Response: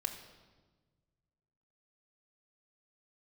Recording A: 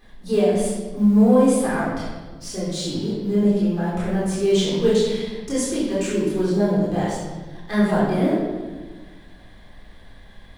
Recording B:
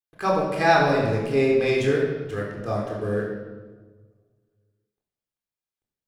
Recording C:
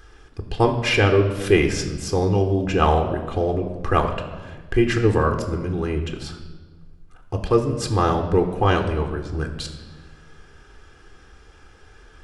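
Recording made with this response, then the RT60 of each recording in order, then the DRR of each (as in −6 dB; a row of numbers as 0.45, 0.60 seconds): C; 1.3, 1.3, 1.4 seconds; −7.5, −2.0, 6.0 decibels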